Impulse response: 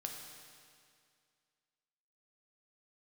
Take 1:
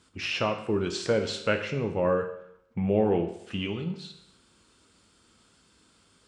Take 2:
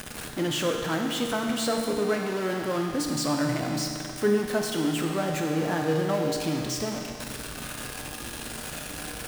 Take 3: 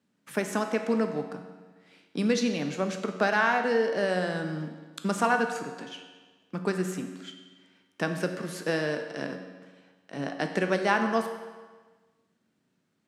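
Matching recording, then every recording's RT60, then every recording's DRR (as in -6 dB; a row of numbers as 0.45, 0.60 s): 2; 0.75, 2.2, 1.4 s; 5.0, 1.5, 5.5 dB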